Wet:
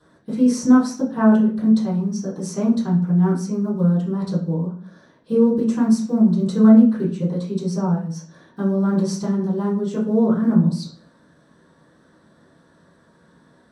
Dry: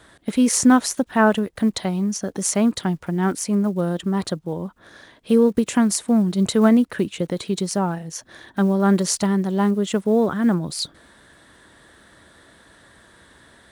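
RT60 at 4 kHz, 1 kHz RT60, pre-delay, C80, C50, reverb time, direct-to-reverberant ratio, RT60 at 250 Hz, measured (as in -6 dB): 0.40 s, 0.45 s, 3 ms, 11.5 dB, 7.0 dB, 0.45 s, -11.0 dB, 0.70 s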